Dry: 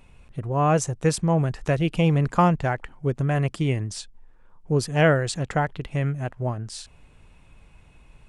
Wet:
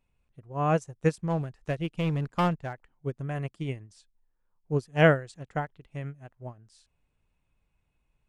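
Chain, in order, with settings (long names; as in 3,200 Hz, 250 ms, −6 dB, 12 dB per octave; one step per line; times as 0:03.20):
0:01.17–0:02.90: gain into a clipping stage and back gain 15.5 dB
expander for the loud parts 2.5 to 1, over −30 dBFS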